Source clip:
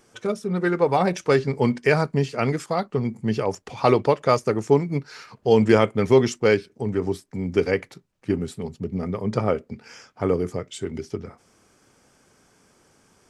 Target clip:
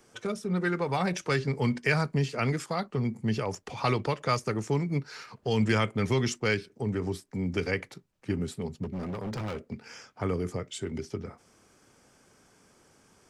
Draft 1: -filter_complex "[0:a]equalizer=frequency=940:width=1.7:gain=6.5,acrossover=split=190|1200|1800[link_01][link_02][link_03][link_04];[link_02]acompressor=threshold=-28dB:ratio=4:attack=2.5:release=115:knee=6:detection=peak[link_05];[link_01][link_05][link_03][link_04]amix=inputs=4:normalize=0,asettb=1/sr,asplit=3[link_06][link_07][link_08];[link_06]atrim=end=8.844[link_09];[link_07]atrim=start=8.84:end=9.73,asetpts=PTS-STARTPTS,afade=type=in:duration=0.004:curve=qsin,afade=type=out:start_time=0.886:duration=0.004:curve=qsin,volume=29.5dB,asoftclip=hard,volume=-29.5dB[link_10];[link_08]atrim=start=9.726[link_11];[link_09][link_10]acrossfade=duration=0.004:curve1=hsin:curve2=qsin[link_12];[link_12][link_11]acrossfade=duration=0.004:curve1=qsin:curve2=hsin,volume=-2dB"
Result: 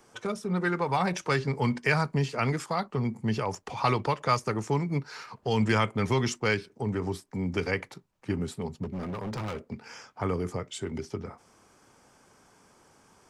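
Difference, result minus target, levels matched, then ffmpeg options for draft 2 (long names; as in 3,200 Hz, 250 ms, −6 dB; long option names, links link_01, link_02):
1,000 Hz band +3.0 dB
-filter_complex "[0:a]acrossover=split=190|1200|1800[link_01][link_02][link_03][link_04];[link_02]acompressor=threshold=-28dB:ratio=4:attack=2.5:release=115:knee=6:detection=peak[link_05];[link_01][link_05][link_03][link_04]amix=inputs=4:normalize=0,asettb=1/sr,asplit=3[link_06][link_07][link_08];[link_06]atrim=end=8.844[link_09];[link_07]atrim=start=8.84:end=9.73,asetpts=PTS-STARTPTS,afade=type=in:duration=0.004:curve=qsin,afade=type=out:start_time=0.886:duration=0.004:curve=qsin,volume=29.5dB,asoftclip=hard,volume=-29.5dB[link_10];[link_08]atrim=start=9.726[link_11];[link_09][link_10]acrossfade=duration=0.004:curve1=hsin:curve2=qsin[link_12];[link_12][link_11]acrossfade=duration=0.004:curve1=qsin:curve2=hsin,volume=-2dB"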